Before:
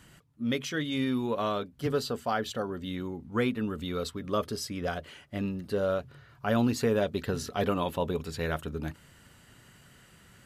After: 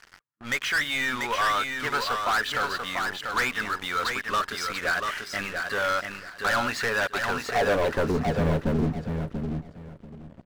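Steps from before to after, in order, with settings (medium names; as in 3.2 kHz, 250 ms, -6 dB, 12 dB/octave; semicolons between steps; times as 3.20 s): dynamic bell 300 Hz, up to -7 dB, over -41 dBFS, Q 0.73; band-pass sweep 1.6 kHz -> 220 Hz, 7.11–8.27 s; waveshaping leveller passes 5; bass shelf 66 Hz +10 dB; feedback delay 689 ms, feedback 21%, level -5 dB; trim +3 dB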